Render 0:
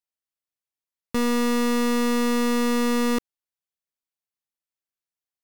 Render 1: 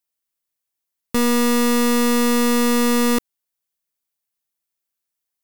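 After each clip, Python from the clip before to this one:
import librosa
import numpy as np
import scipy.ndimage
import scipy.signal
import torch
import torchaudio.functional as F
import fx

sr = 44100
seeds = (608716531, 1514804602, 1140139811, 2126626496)

y = fx.high_shelf(x, sr, hz=7800.0, db=9.0)
y = y * librosa.db_to_amplitude(4.5)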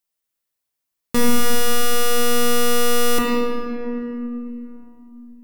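y = fx.room_shoebox(x, sr, seeds[0], volume_m3=150.0, walls='hard', distance_m=0.46)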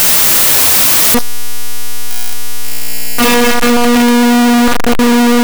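y = np.sign(x) * np.sqrt(np.mean(np.square(x)))
y = y * librosa.db_to_amplitude(8.5)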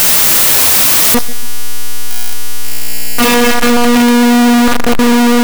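y = fx.echo_feedback(x, sr, ms=141, feedback_pct=45, wet_db=-19.5)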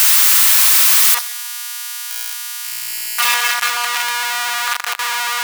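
y = scipy.signal.sosfilt(scipy.signal.butter(4, 1000.0, 'highpass', fs=sr, output='sos'), x)
y = y * librosa.db_to_amplitude(-2.5)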